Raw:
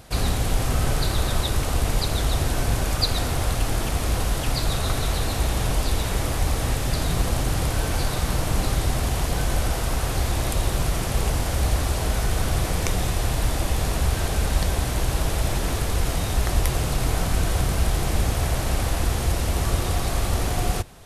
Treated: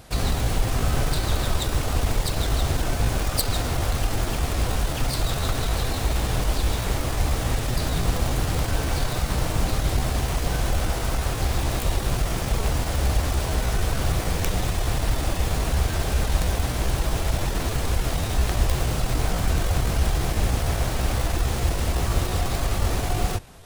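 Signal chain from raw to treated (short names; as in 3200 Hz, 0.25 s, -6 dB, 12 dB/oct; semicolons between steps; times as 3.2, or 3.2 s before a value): self-modulated delay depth 0.28 ms; tempo 0.89×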